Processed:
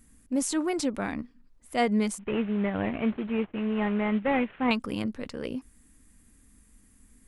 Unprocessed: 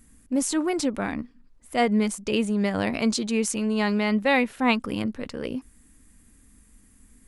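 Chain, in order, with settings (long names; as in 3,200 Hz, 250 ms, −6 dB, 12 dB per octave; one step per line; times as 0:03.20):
0:02.19–0:04.71: variable-slope delta modulation 16 kbit/s
level −3 dB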